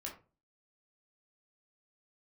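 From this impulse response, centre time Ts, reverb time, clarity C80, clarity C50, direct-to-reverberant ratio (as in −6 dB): 21 ms, 0.35 s, 14.5 dB, 9.0 dB, −2.0 dB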